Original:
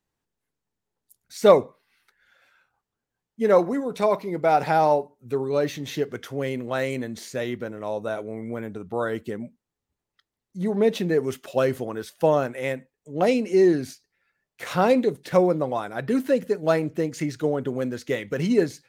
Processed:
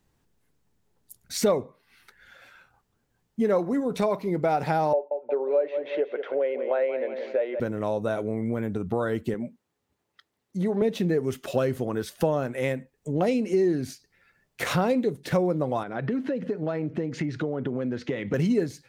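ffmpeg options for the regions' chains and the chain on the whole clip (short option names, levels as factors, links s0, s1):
-filter_complex "[0:a]asettb=1/sr,asplit=3[s0][s1][s2];[s0]atrim=end=4.934[s3];[s1]atrim=start=4.93:end=7.6,asetpts=PTS-STARTPTS,afade=t=in:d=0.004:c=qsin,afade=t=out:st=2.666:d=0.004:c=qsin,highpass=f=420:w=0.5412,highpass=f=420:w=1.3066,equalizer=f=560:t=q:w=4:g=9,equalizer=f=1200:t=q:w=4:g=-7,equalizer=f=1800:t=q:w=4:g=-5,lowpass=f=2400:w=0.5412,lowpass=f=2400:w=1.3066,aecho=1:1:179|358|537:0.251|0.0829|0.0274,atrim=end_sample=117747[s4];[s2]atrim=start=7.596[s5];[s3][s4]acrossfade=d=0.004:c1=hsin:c2=qsin[s6];[s6][s5]acrossfade=d=0.004:c1=qsin:c2=hsin,asettb=1/sr,asplit=3[s7][s8][s9];[s7]atrim=end=9.344[s10];[s8]atrim=start=9.34:end=10.82,asetpts=PTS-STARTPTS,afade=t=in:d=0.004:c=qsin,afade=t=out:st=1.476:d=0.004:c=qsin,highpass=83,bass=f=250:g=-9,treble=f=4000:g=-4[s11];[s9]atrim=start=10.816[s12];[s10][s11]acrossfade=d=0.004:c1=hsin:c2=qsin[s13];[s13][s12]acrossfade=d=0.004:c1=qsin:c2=hsin,asettb=1/sr,asplit=3[s14][s15][s16];[s14]atrim=end=15.834[s17];[s15]atrim=start=15.83:end=18.34,asetpts=PTS-STARTPTS,afade=t=in:d=0.004:c=qsin,afade=t=out:st=2.506:d=0.004:c=qsin,acompressor=threshold=0.0178:ratio=2.5:attack=3.2:release=140:knee=1:detection=peak,highpass=120,lowpass=3200[s18];[s16]atrim=start=18.336[s19];[s17][s18]acrossfade=d=0.004:c1=hsin:c2=qsin[s20];[s20][s19]acrossfade=d=0.004:c1=qsin:c2=hsin,lowshelf=f=290:g=7.5,acompressor=threshold=0.0178:ratio=3,volume=2.66"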